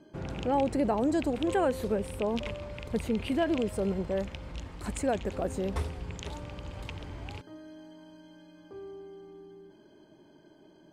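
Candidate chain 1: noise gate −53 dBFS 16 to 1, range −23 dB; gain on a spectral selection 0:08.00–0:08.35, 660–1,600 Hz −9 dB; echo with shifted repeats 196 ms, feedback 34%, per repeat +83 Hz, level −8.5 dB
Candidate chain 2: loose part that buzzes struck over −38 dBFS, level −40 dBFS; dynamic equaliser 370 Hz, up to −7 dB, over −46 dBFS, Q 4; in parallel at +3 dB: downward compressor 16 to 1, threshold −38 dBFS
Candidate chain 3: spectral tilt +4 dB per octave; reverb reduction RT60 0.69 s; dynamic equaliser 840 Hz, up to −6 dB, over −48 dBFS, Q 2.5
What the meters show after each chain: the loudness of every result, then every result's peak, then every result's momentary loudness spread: −31.0, −30.5, −35.5 LKFS; −15.0, −15.5, −12.5 dBFS; 19, 19, 20 LU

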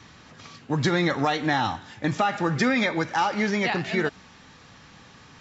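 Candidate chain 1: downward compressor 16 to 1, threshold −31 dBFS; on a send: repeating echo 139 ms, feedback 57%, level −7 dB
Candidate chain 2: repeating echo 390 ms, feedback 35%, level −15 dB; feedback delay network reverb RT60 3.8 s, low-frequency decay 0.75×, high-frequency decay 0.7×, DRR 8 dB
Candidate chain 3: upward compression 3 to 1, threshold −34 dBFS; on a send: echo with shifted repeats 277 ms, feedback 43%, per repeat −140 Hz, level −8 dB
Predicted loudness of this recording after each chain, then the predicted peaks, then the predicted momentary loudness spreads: −35.0, −24.0, −24.5 LKFS; −19.0, −8.5, −9.0 dBFS; 14, 14, 18 LU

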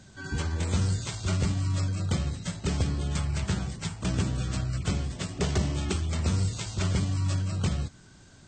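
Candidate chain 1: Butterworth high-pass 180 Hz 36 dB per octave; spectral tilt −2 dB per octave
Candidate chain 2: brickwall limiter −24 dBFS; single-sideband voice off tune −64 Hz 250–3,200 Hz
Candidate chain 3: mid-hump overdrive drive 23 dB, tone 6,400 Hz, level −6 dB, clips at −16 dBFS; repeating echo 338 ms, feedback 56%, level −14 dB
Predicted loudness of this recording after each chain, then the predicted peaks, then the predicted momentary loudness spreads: −33.5, −43.0, −25.5 LKFS; −15.0, −26.5, −14.5 dBFS; 5, 4, 3 LU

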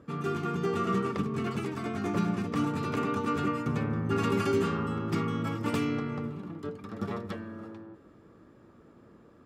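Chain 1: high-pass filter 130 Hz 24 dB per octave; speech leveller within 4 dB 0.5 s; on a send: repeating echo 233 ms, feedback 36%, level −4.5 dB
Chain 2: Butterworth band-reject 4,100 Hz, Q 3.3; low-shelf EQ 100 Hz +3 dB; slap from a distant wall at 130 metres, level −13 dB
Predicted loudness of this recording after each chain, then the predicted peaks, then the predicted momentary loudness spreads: −30.5, −30.5 LKFS; −16.0, −16.5 dBFS; 6, 10 LU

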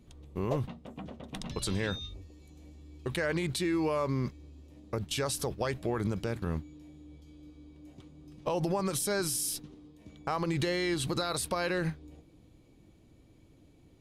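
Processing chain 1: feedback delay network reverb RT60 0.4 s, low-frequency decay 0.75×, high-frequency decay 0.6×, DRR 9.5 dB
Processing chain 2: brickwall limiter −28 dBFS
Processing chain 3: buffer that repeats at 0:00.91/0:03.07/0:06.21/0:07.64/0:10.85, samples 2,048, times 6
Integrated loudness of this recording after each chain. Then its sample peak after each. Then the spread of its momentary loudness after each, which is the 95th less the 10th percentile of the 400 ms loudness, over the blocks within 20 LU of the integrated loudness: −32.5, −38.5, −33.0 LKFS; −17.0, −28.0, −17.0 dBFS; 20, 17, 22 LU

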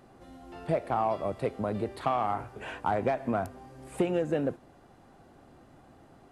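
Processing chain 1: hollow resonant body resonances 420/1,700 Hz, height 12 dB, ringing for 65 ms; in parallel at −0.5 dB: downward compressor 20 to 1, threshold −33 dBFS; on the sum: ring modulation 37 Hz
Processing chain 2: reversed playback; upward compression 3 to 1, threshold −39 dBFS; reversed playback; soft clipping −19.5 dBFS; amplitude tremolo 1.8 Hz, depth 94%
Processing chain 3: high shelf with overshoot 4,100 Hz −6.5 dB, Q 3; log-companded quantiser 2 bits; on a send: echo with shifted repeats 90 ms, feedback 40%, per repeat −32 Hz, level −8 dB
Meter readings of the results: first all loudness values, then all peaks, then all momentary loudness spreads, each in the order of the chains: −30.0, −36.0, −28.0 LKFS; −10.5, −20.5, −18.0 dBFS; 15, 21, 11 LU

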